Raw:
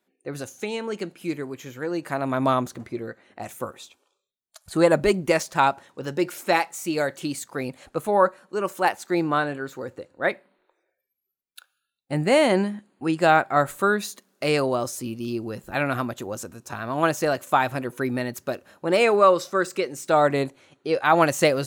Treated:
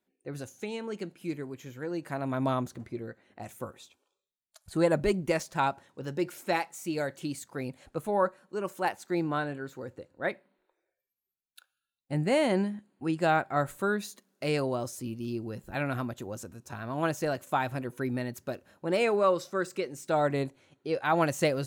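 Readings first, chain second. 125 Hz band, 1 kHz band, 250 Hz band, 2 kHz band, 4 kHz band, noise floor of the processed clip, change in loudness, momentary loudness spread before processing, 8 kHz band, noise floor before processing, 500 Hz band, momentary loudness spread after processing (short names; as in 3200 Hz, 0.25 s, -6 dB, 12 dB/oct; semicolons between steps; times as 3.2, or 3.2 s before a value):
-3.0 dB, -8.5 dB, -5.5 dB, -8.5 dB, -8.5 dB, under -85 dBFS, -7.5 dB, 16 LU, -8.5 dB, -81 dBFS, -7.5 dB, 15 LU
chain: low shelf 210 Hz +8 dB; notch 1200 Hz, Q 18; gain -8.5 dB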